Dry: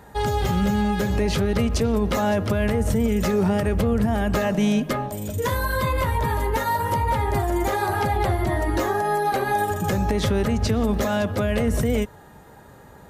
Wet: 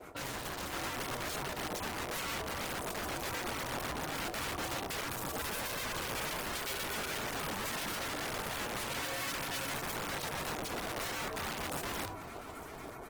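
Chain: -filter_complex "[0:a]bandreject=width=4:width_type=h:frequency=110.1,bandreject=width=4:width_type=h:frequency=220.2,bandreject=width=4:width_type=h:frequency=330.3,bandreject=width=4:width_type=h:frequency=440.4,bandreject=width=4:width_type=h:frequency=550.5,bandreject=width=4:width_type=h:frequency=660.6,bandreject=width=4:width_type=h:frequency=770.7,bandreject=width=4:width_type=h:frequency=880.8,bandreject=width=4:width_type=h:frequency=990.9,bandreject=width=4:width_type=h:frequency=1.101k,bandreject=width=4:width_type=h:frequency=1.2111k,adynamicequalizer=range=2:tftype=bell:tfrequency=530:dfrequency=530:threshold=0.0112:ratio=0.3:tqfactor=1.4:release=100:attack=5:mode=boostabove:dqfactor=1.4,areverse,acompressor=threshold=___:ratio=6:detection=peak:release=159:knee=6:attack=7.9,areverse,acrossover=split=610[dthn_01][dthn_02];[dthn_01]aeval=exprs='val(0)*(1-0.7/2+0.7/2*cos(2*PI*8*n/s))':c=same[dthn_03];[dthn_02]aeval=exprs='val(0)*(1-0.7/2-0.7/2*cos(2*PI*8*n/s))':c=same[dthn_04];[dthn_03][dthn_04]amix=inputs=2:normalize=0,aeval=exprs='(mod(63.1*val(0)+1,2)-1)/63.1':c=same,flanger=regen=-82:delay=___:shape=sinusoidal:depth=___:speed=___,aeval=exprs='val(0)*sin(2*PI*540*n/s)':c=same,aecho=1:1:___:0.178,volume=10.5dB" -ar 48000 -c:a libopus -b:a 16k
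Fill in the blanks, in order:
-34dB, 6.9, 1.3, 0.83, 846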